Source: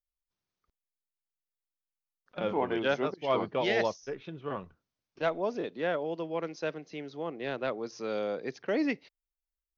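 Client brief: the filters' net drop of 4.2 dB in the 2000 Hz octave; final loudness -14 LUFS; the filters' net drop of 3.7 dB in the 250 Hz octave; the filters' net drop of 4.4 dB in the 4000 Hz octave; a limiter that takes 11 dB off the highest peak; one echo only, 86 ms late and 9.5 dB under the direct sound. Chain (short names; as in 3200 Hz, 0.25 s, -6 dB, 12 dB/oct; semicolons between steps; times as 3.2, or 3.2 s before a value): bell 250 Hz -5 dB; bell 2000 Hz -4.5 dB; bell 4000 Hz -4 dB; limiter -27.5 dBFS; echo 86 ms -9.5 dB; gain +24 dB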